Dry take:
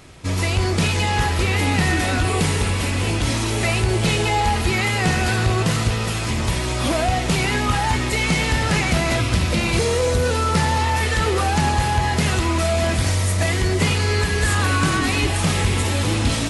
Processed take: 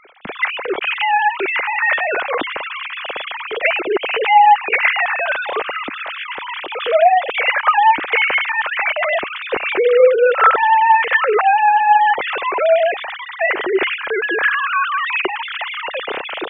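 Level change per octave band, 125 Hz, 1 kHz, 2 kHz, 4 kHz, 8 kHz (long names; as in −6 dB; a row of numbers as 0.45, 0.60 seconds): below −35 dB, +9.0 dB, +6.5 dB, −2.0 dB, below −40 dB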